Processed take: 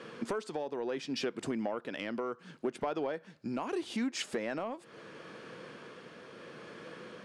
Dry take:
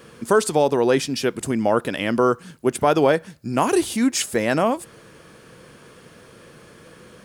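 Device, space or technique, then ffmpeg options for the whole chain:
AM radio: -af "highpass=200,lowpass=4.3k,acompressor=threshold=-30dB:ratio=8,asoftclip=type=tanh:threshold=-22dB,tremolo=f=0.73:d=0.27"

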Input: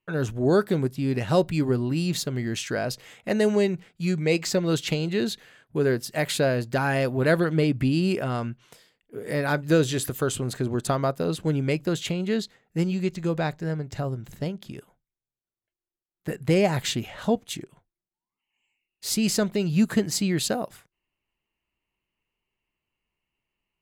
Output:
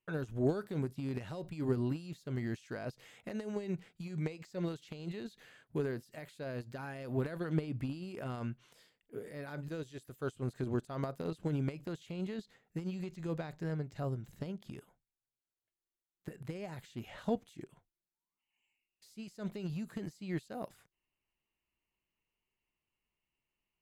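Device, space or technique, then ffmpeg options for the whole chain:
de-esser from a sidechain: -filter_complex "[0:a]asplit=2[a][b];[b]highpass=6.5k,apad=whole_len=1050261[c];[a][c]sidechaincompress=threshold=-58dB:ratio=10:attack=2.9:release=41,volume=-6.5dB"

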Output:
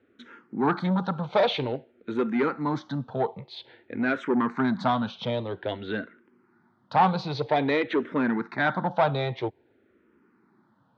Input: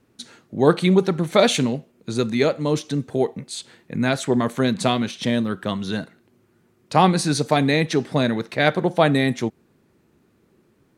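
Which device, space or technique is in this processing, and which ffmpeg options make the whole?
barber-pole phaser into a guitar amplifier: -filter_complex "[0:a]asplit=2[a][b];[b]afreqshift=-0.51[c];[a][c]amix=inputs=2:normalize=1,asoftclip=type=tanh:threshold=-17.5dB,highpass=110,equalizer=f=160:t=q:w=4:g=-6,equalizer=f=900:t=q:w=4:g=7,equalizer=f=1.4k:t=q:w=4:g=5,equalizer=f=2.7k:t=q:w=4:g=-5,lowpass=f=3.5k:w=0.5412,lowpass=f=3.5k:w=1.3066"

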